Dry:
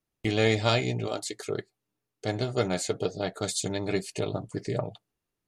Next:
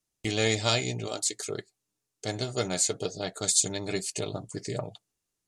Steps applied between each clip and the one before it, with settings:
parametric band 7,400 Hz +13.5 dB 1.6 octaves
level −3.5 dB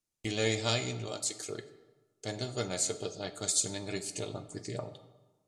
convolution reverb RT60 1.2 s, pre-delay 3 ms, DRR 8.5 dB
level −5.5 dB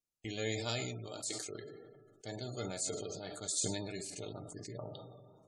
tape wow and flutter 29 cents
gate on every frequency bin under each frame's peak −25 dB strong
level that may fall only so fast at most 34 dB per second
level −7.5 dB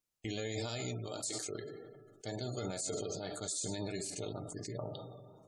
brickwall limiter −31.5 dBFS, peak gain reduction 9 dB
dynamic equaliser 2,500 Hz, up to −3 dB, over −56 dBFS, Q 1.2
level +3.5 dB

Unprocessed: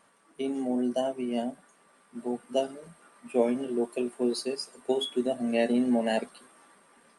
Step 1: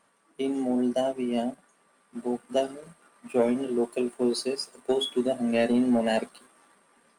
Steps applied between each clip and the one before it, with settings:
leveller curve on the samples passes 1
level −1 dB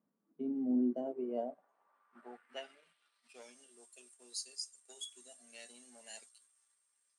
dynamic equaliser 6,700 Hz, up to +5 dB, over −52 dBFS, Q 1.3
band-pass filter sweep 220 Hz → 7,200 Hz, 0:00.64–0:03.66
level −4 dB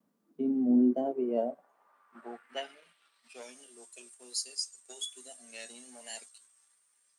pitch vibrato 1.2 Hz 45 cents
level +7.5 dB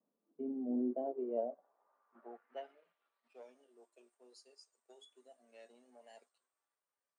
resonant band-pass 540 Hz, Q 1.1
level −5.5 dB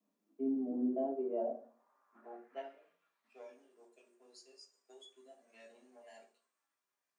convolution reverb RT60 0.40 s, pre-delay 3 ms, DRR 0 dB

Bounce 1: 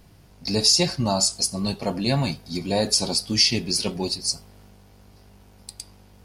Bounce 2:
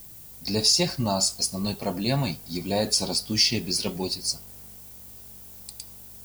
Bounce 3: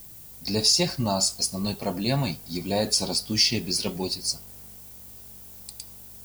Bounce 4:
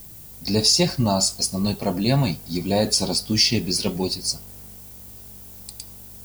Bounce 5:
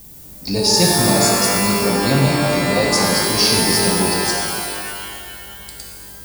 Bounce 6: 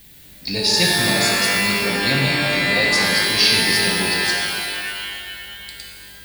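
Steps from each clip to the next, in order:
background noise violet −43 dBFS; level −2.5 dB
no processing that can be heard
low-shelf EQ 490 Hz +4 dB; level +2.5 dB
reverb with rising layers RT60 2.2 s, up +12 semitones, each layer −2 dB, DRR −1 dB
flat-topped bell 2,600 Hz +12 dB; level −6 dB

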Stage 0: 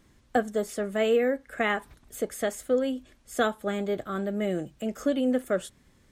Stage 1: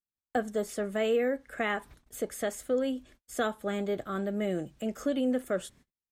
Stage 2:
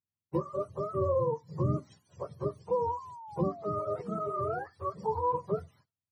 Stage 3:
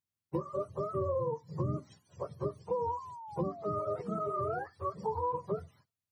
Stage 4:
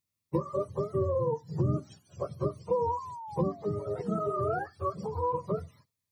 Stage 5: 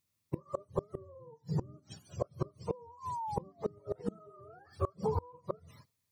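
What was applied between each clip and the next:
noise gate −53 dBFS, range −44 dB; in parallel at 0 dB: brickwall limiter −20.5 dBFS, peak gain reduction 9.5 dB; on the sum: level −8 dB
frequency axis turned over on the octave scale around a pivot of 500 Hz; sound drawn into the spectrogram fall, 0:02.97–0:04.42, 360–1,100 Hz −46 dBFS
downward compressor, threshold −29 dBFS, peak gain reduction 6 dB
phaser whose notches keep moving one way falling 0.36 Hz; level +6 dB
gate with flip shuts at −24 dBFS, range −28 dB; level +4 dB

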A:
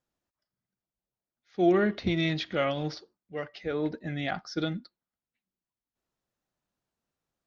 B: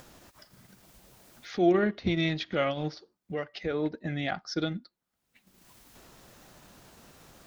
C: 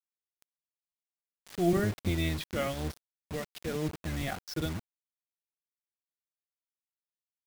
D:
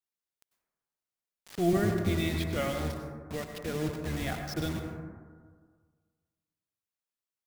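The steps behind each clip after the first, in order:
transient designer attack 0 dB, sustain −6 dB; upward compression, threshold −28 dBFS
sub-octave generator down 1 octave, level +2 dB; bit-depth reduction 6 bits, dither none; level −5 dB
dense smooth reverb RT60 1.7 s, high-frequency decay 0.25×, pre-delay 85 ms, DRR 4 dB

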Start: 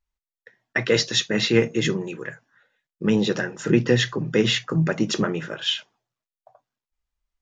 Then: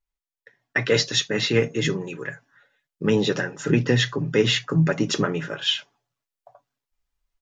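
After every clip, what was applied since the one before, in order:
comb filter 7.1 ms, depth 42%
automatic gain control gain up to 7 dB
level −4.5 dB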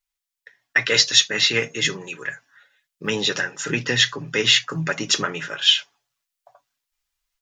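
tilt shelving filter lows −8.5 dB, about 900 Hz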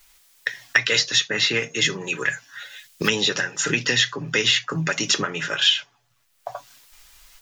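multiband upward and downward compressor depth 100%
level −1 dB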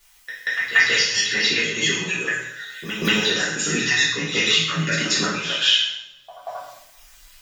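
time-frequency cells dropped at random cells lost 22%
backwards echo 184 ms −10 dB
coupled-rooms reverb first 0.7 s, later 2 s, from −28 dB, DRR −7 dB
level −5.5 dB

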